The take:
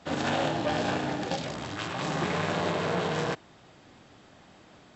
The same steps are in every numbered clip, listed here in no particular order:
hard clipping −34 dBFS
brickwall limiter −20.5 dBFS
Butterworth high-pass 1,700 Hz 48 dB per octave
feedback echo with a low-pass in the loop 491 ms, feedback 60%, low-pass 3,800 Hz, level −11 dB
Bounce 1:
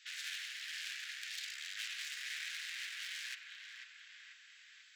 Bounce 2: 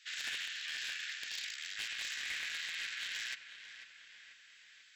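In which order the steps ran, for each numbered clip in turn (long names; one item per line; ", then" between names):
brickwall limiter, then feedback echo with a low-pass in the loop, then hard clipping, then Butterworth high-pass
brickwall limiter, then Butterworth high-pass, then hard clipping, then feedback echo with a low-pass in the loop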